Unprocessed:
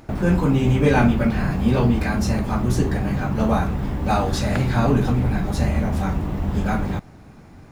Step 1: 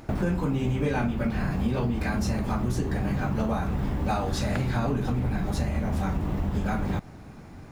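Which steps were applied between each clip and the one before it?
compression, threshold -23 dBFS, peak gain reduction 11.5 dB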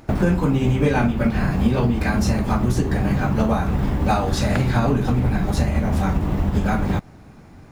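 upward expansion 1.5:1, over -40 dBFS; trim +9 dB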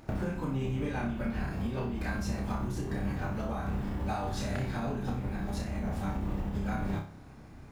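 compression 6:1, threshold -24 dBFS, peak gain reduction 11 dB; on a send: flutter echo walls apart 5.2 m, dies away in 0.4 s; on the sum: trim -7.5 dB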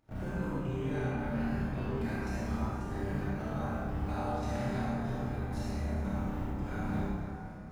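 trance gate ".xxxx.xxxx" 139 bpm -12 dB; reverberation RT60 2.6 s, pre-delay 28 ms, DRR -7.5 dB; trim -9 dB

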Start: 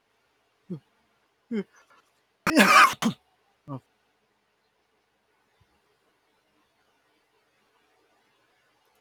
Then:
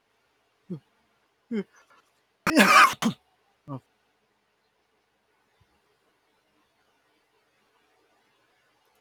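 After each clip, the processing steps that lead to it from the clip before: no audible change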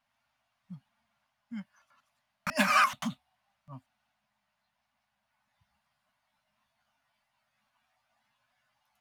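Chebyshev band-stop 260–580 Hz, order 4; trim -8 dB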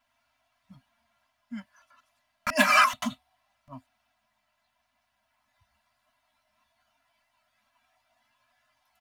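comb 3 ms, depth 90%; trim +2.5 dB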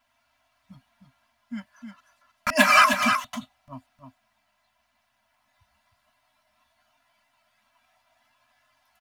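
delay 310 ms -7 dB; trim +3.5 dB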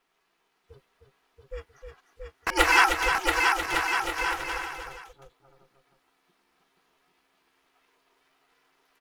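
bouncing-ball echo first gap 680 ms, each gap 0.7×, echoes 5; ring modulator 270 Hz

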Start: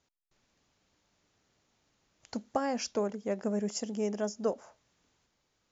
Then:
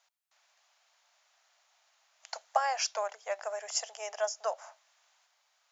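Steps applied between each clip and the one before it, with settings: elliptic high-pass 660 Hz, stop band 60 dB; trim +6.5 dB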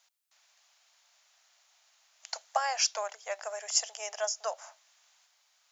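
treble shelf 2.3 kHz +9 dB; trim -2.5 dB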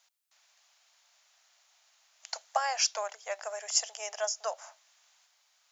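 no audible change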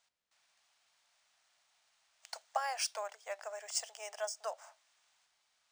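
decimation joined by straight lines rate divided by 3×; trim -5.5 dB

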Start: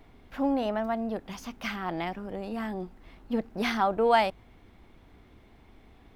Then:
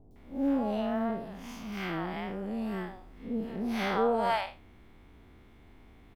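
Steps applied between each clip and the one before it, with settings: spectral blur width 138 ms; three bands offset in time lows, highs, mids 110/160 ms, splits 670/4800 Hz; trim +1.5 dB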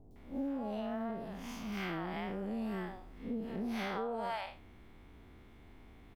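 compression 10:1, threshold -33 dBFS, peak gain reduction 11 dB; trim -1 dB

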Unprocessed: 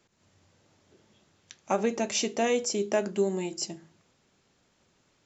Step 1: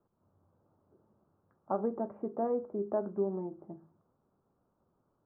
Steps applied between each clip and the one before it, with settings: steep low-pass 1.3 kHz 48 dB/octave; trim -5.5 dB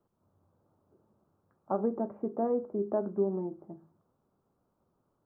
dynamic bell 260 Hz, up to +4 dB, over -42 dBFS, Q 0.73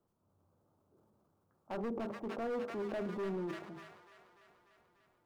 hard clipper -30.5 dBFS, distortion -7 dB; feedback echo behind a high-pass 295 ms, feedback 66%, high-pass 1.5 kHz, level -3.5 dB; transient shaper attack -3 dB, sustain +7 dB; trim -3.5 dB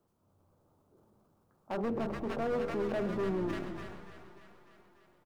frequency-shifting echo 129 ms, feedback 60%, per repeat -80 Hz, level -12 dB; on a send at -15.5 dB: reverberation RT60 2.7 s, pre-delay 100 ms; on the sum: trim +4.5 dB

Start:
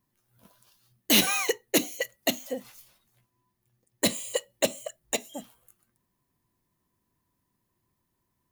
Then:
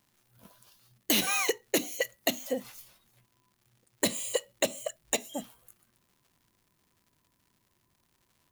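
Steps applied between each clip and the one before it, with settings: compression 6:1, threshold -26 dBFS, peak gain reduction 9.5 dB; crackle 190 per s -57 dBFS; trim +2.5 dB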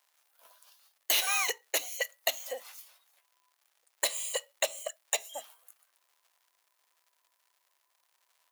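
high-pass 600 Hz 24 dB/octave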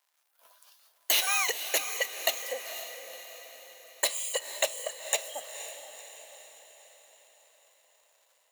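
level rider gain up to 6 dB; echo that smears into a reverb 495 ms, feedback 53%, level -10 dB; trim -4 dB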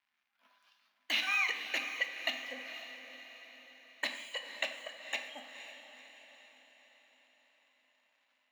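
FFT filter 150 Hz 0 dB, 250 Hz +11 dB, 410 Hz -16 dB, 2.3 kHz 0 dB, 5.6 kHz -15 dB, 8.6 kHz -28 dB; on a send at -6.5 dB: reverberation RT60 1.1 s, pre-delay 13 ms

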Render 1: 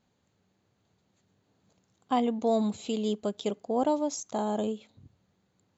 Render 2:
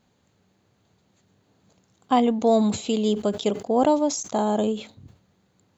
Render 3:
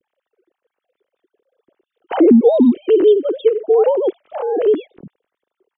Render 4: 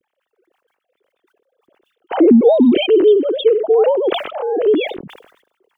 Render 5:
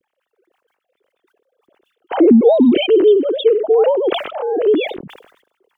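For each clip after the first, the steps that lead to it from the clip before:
decay stretcher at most 150 dB/s; trim +7 dB
formants replaced by sine waves; resonant low shelf 560 Hz +10.5 dB, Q 1.5; trim -1 dB
decay stretcher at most 75 dB/s
wow and flutter 22 cents

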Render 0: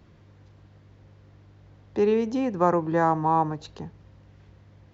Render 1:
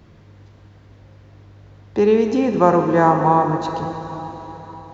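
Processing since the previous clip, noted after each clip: plate-style reverb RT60 4.2 s, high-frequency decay 0.95×, DRR 4.5 dB; trim +6.5 dB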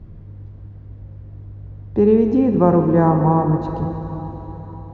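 tilt EQ -4.5 dB/octave; trim -5.5 dB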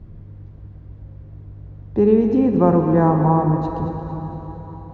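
two-band feedback delay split 550 Hz, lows 113 ms, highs 227 ms, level -10.5 dB; trim -1 dB

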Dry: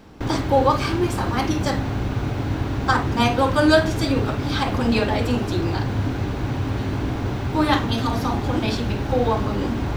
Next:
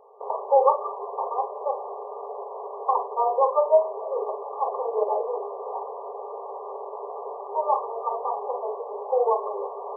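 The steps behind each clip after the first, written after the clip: FFT band-pass 390–1200 Hz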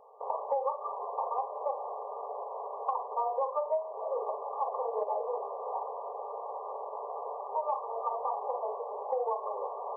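peaking EQ 390 Hz -14.5 dB 0.23 oct; compression 6:1, threshold -26 dBFS, peak gain reduction 12.5 dB; trim -2 dB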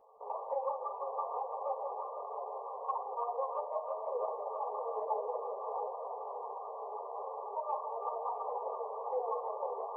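echo whose repeats swap between lows and highs 166 ms, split 840 Hz, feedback 85%, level -4.5 dB; three-phase chorus; trim -2.5 dB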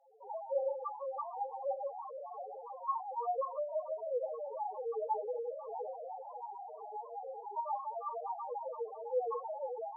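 flutter echo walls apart 5.5 m, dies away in 0.26 s; loudest bins only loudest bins 2; trim +4 dB

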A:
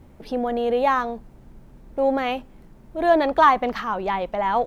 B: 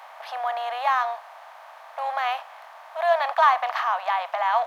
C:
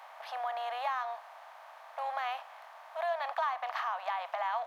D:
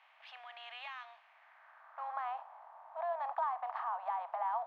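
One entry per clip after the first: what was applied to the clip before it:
spectral levelling over time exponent 0.6; elliptic high-pass 680 Hz, stop band 50 dB; trim -3 dB
compression 3:1, threshold -25 dBFS, peak gain reduction 9.5 dB; trim -6.5 dB
band-pass sweep 2.7 kHz -> 880 Hz, 1.19–2.37 s; tape noise reduction on one side only decoder only

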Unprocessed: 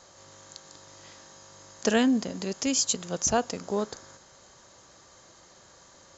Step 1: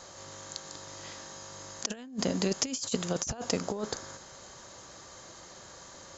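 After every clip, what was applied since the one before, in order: compressor with a negative ratio -31 dBFS, ratio -0.5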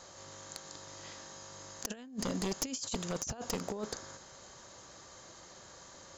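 one-sided wavefolder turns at -23.5 dBFS; trim -4 dB

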